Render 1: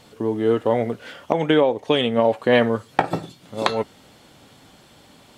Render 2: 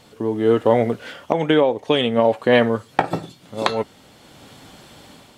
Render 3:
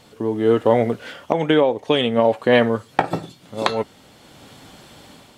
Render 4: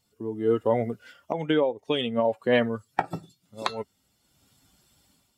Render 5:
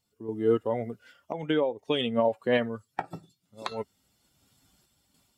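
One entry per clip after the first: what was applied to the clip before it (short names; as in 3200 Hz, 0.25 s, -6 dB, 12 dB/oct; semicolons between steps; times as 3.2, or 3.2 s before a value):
AGC gain up to 6 dB
nothing audible
per-bin expansion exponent 1.5; gain -5.5 dB
random-step tremolo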